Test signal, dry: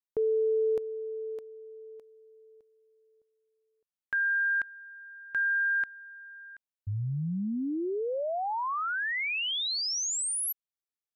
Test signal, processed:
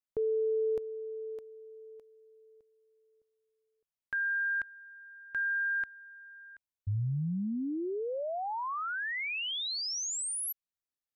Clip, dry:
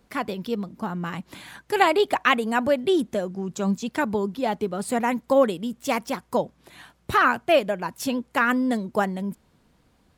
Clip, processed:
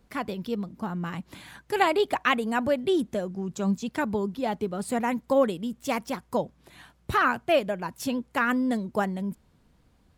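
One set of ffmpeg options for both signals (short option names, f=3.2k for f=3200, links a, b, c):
-af "lowshelf=f=130:g=8,volume=-4dB"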